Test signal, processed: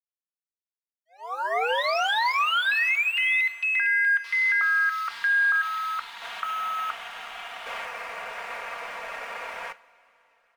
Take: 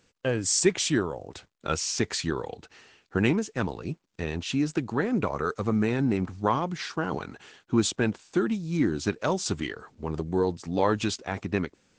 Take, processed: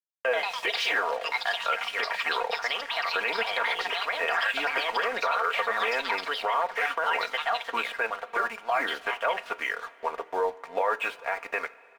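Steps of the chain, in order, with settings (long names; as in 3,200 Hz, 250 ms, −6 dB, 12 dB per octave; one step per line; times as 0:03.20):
elliptic band-pass filter 570–2,500 Hz, stop band 70 dB
in parallel at −1.5 dB: downward compressor, threshold −37 dBFS
on the sum: dead-zone distortion −52 dBFS
parametric band 730 Hz −3 dB 0.24 octaves
delay with pitch and tempo change per echo 137 ms, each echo +4 semitones, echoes 3
comb filter 4.3 ms, depth 68%
brickwall limiter −22 dBFS
coupled-rooms reverb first 0.33 s, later 4.3 s, from −18 dB, DRR 13.5 dB
level +5.5 dB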